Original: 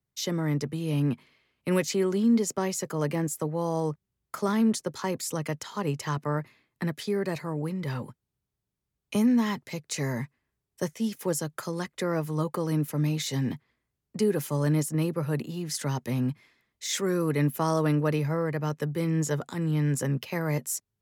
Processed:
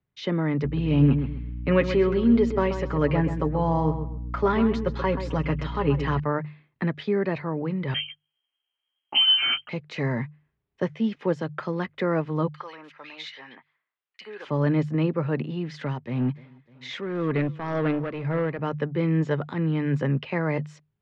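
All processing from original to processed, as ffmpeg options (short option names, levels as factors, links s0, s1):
-filter_complex "[0:a]asettb=1/sr,asplit=3[s0][s1][s2];[s0]atrim=end=0.644[s3];[s1]atrim=start=0.64:end=6.2,asetpts=PTS-STARTPTS,afade=t=in:d=0.004:c=qsin,afade=t=out:st=5.556:d=0.004:c=qsin,aecho=1:1:7.2:0.62,atrim=end_sample=245196,aeval=exprs='val(0)+0.0158*(sin(2*PI*60*n/s)+sin(2*PI*2*60*n/s)/2+sin(2*PI*3*60*n/s)/3+sin(2*PI*4*60*n/s)/4+sin(2*PI*5*60*n/s)/5)':c=same,asplit=2[s4][s5];[s5]adelay=131,lowpass=f=2800:p=1,volume=0.355,asplit=2[s6][s7];[s7]adelay=131,lowpass=f=2800:p=1,volume=0.28,asplit=2[s8][s9];[s9]adelay=131,lowpass=f=2800:p=1,volume=0.28[s10];[s4][s6][s8][s10]amix=inputs=4:normalize=0,atrim=end_sample=245196[s11];[s2]atrim=start=6.196[s12];[s3][s11]acrossfade=d=0.004:c1=hsin:c2=qsin[s13];[s13][s12]acrossfade=d=0.004:c1=qsin:c2=hsin,asettb=1/sr,asplit=3[s14][s15][s16];[s14]atrim=end=7.944[s17];[s15]atrim=start=7.94:end=9.69,asetpts=PTS-STARTPTS,afade=t=in:d=0.004:c=qsin,afade=t=out:st=1.746:d=0.004:c=qsin,asplit=2[s18][s19];[s19]adelay=15,volume=0.668[s20];[s18][s20]amix=inputs=2:normalize=0,atrim=end_sample=77175,lowpass=f=2800:t=q:w=0.5098,lowpass=f=2800:t=q:w=0.6013,lowpass=f=2800:t=q:w=0.9,lowpass=f=2800:t=q:w=2.563,afreqshift=-3300[s21];[s16]atrim=start=9.686[s22];[s17][s21]acrossfade=d=0.004:c1=hsin:c2=qsin[s23];[s23][s22]acrossfade=d=0.004:c1=qsin:c2=hsin,asettb=1/sr,asplit=3[s24][s25][s26];[s24]atrim=end=12.484[s27];[s25]atrim=start=12.48:end=14.45,asetpts=PTS-STARTPTS,afade=t=in:d=0.004:c=qsin,afade=t=out:st=1.966:d=0.004:c=qsin,highpass=1200,acrossover=split=1900[s28][s29];[s28]adelay=60[s30];[s30][s29]amix=inputs=2:normalize=0,atrim=end_sample=86877[s31];[s26]atrim=start=14.446[s32];[s27][s31]acrossfade=d=0.004:c1=hsin:c2=qsin[s33];[s33][s32]acrossfade=d=0.004:c1=qsin:c2=hsin,asettb=1/sr,asplit=3[s34][s35][s36];[s34]atrim=end=15.764[s37];[s35]atrim=start=15.76:end=18.59,asetpts=PTS-STARTPTS,afade=t=in:d=0.004:c=qsin,afade=t=out:st=2.826:d=0.004:c=qsin,aecho=1:1:301|602|903:0.0794|0.0389|0.0191,atrim=end_sample=124803,asoftclip=type=hard:threshold=0.075,tremolo=f=1.9:d=0.57[s38];[s36]atrim=start=18.586[s39];[s37][s38]acrossfade=d=0.004:c1=hsin:c2=qsin[s40];[s40][s39]acrossfade=d=0.004:c1=qsin:c2=hsin,lowpass=f=3200:w=0.5412,lowpass=f=3200:w=1.3066,bandreject=f=50:t=h:w=6,bandreject=f=100:t=h:w=6,bandreject=f=150:t=h:w=6,volume=1.58"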